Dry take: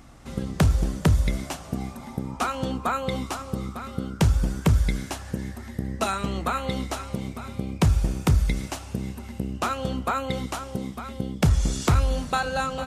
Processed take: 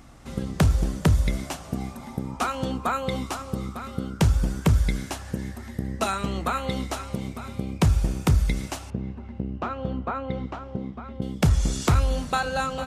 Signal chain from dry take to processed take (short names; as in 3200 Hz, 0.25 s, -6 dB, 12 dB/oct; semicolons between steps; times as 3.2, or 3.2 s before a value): 8.9–11.22 tape spacing loss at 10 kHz 37 dB